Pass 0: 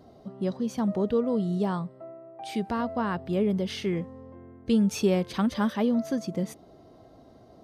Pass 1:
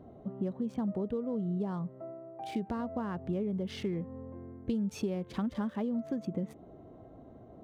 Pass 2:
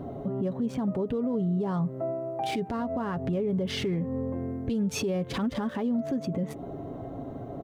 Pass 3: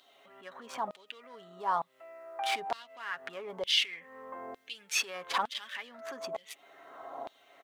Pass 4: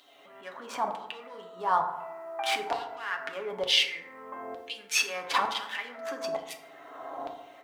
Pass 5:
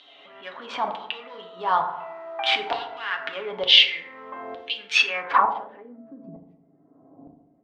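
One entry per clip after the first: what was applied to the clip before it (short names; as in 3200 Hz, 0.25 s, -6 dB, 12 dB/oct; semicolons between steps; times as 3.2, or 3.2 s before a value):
Wiener smoothing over 9 samples; compressor, threshold -32 dBFS, peak gain reduction 13 dB; tilt shelf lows +3.5 dB, about 710 Hz; gain -1 dB
comb 7.2 ms, depth 42%; in parallel at +1 dB: compressor, threshold -41 dBFS, peak gain reduction 13 dB; on the sum: limiter -28.5 dBFS, peak gain reduction 10 dB; gain +7 dB
LFO high-pass saw down 1.1 Hz 810–3600 Hz; gain +2.5 dB
FDN reverb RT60 1 s, low-frequency decay 1.05×, high-frequency decay 0.4×, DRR 3 dB; gain +3.5 dB
low-pass sweep 3400 Hz -> 200 Hz, 5.02–6.07; gain +3 dB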